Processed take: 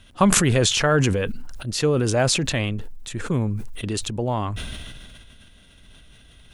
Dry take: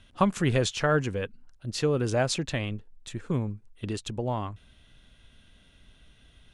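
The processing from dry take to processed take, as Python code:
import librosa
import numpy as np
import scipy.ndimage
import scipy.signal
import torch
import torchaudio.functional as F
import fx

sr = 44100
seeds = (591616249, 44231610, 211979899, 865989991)

y = fx.high_shelf(x, sr, hz=9500.0, db=10.0)
y = fx.sustainer(y, sr, db_per_s=25.0)
y = F.gain(torch.from_numpy(y), 4.5).numpy()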